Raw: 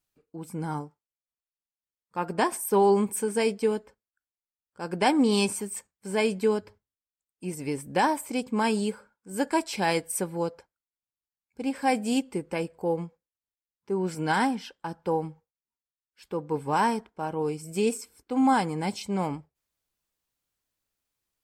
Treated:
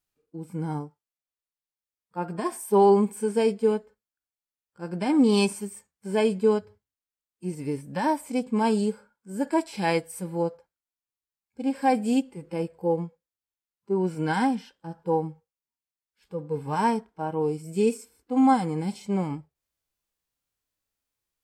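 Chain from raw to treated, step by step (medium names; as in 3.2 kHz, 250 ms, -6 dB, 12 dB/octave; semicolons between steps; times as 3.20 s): harmonic-percussive split percussive -18 dB; trim +3 dB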